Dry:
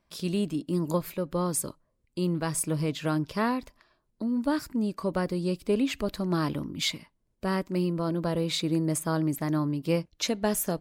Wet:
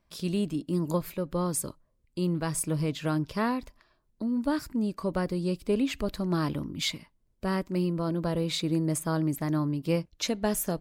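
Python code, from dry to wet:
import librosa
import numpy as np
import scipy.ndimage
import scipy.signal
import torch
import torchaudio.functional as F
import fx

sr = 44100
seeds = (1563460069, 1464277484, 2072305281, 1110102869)

y = fx.low_shelf(x, sr, hz=92.0, db=7.0)
y = y * librosa.db_to_amplitude(-1.5)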